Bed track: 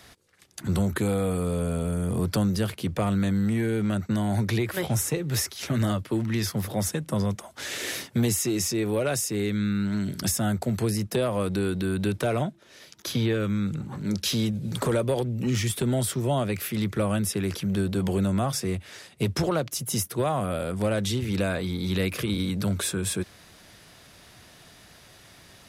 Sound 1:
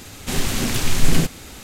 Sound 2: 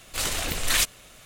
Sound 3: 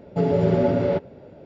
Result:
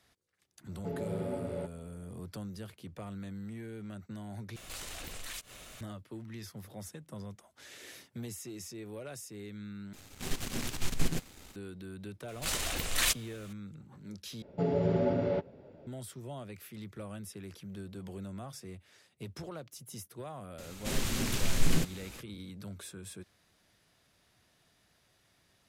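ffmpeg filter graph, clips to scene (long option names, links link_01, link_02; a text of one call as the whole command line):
ffmpeg -i bed.wav -i cue0.wav -i cue1.wav -i cue2.wav -filter_complex "[3:a]asplit=2[link_01][link_02];[2:a]asplit=2[link_03][link_04];[1:a]asplit=2[link_05][link_06];[0:a]volume=-18dB[link_07];[link_03]acompressor=threshold=-40dB:ratio=6:attack=3.2:release=140:knee=1:detection=peak[link_08];[link_05]aeval=exprs='if(lt(val(0),0),0.251*val(0),val(0))':channel_layout=same[link_09];[link_06]bandreject=frequency=730:width=16[link_10];[link_07]asplit=4[link_11][link_12][link_13][link_14];[link_11]atrim=end=4.564[link_15];[link_08]atrim=end=1.25,asetpts=PTS-STARTPTS,volume=-0.5dB[link_16];[link_12]atrim=start=5.806:end=9.934[link_17];[link_09]atrim=end=1.63,asetpts=PTS-STARTPTS,volume=-11.5dB[link_18];[link_13]atrim=start=11.556:end=14.424[link_19];[link_02]atrim=end=1.45,asetpts=PTS-STARTPTS,volume=-9dB[link_20];[link_14]atrim=start=15.866[link_21];[link_01]atrim=end=1.45,asetpts=PTS-STARTPTS,volume=-17dB,afade=type=in:duration=0.004:curve=hsin,afade=type=out:start_time=1.446:duration=0.004:curve=hsin,adelay=680[link_22];[link_04]atrim=end=1.25,asetpts=PTS-STARTPTS,volume=-6dB,afade=type=in:duration=0.004:curve=hsin,afade=type=out:start_time=1.246:duration=0.004:curve=hsin,adelay=12280[link_23];[link_10]atrim=end=1.63,asetpts=PTS-STARTPTS,volume=-10.5dB,afade=type=in:duration=0.004:curve=hsin,afade=type=out:start_time=1.626:duration=0.004:curve=hsin,adelay=20580[link_24];[link_15][link_16]acrossfade=duration=0.004:curve1=hsin:curve2=hsin[link_25];[link_25][link_17]acrossfade=duration=0.004:curve1=hsin:curve2=hsin[link_26];[link_26][link_18]acrossfade=duration=0.004:curve1=hsin:curve2=hsin[link_27];[link_27][link_19]acrossfade=duration=0.004:curve1=hsin:curve2=hsin[link_28];[link_28][link_20]acrossfade=duration=0.004:curve1=hsin:curve2=hsin[link_29];[link_29][link_21]acrossfade=duration=0.004:curve1=hsin:curve2=hsin[link_30];[link_30][link_22][link_23][link_24]amix=inputs=4:normalize=0" out.wav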